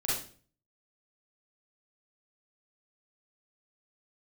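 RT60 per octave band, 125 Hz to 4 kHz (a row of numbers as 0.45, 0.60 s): 0.70, 0.55, 0.50, 0.40, 0.40, 0.40 s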